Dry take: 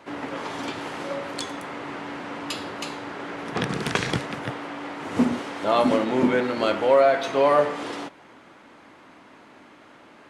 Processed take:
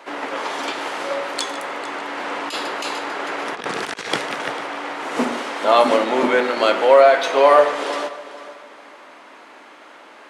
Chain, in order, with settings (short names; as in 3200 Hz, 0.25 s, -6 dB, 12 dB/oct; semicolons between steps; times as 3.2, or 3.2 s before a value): HPF 440 Hz 12 dB/oct; multi-head echo 0.149 s, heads first and third, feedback 41%, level -17 dB; 2.17–4.12 negative-ratio compressor -33 dBFS, ratio -0.5; gain +7.5 dB